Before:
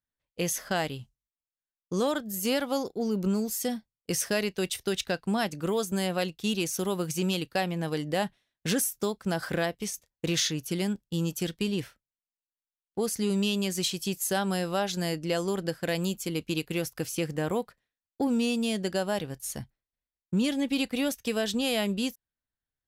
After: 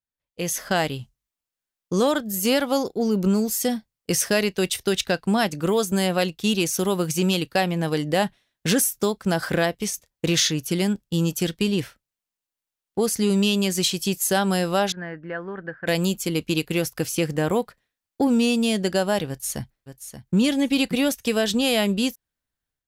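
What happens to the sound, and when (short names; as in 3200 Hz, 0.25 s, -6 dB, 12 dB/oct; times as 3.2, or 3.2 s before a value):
14.92–15.87 ladder low-pass 1800 Hz, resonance 70%
19.28–20.36 echo throw 0.58 s, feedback 20%, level -10 dB
whole clip: AGC gain up to 11 dB; gain -4 dB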